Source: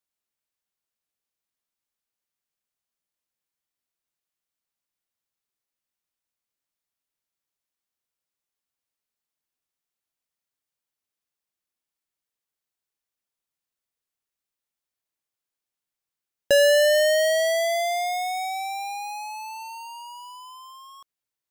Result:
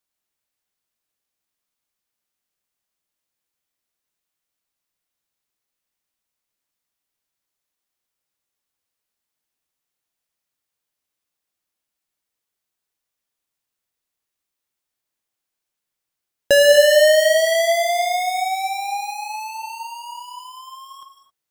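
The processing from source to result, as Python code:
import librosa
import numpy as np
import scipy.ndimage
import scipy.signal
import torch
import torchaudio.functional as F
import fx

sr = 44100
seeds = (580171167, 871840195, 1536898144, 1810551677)

y = fx.rev_gated(x, sr, seeds[0], gate_ms=290, shape='flat', drr_db=5.5)
y = y * 10.0 ** (4.5 / 20.0)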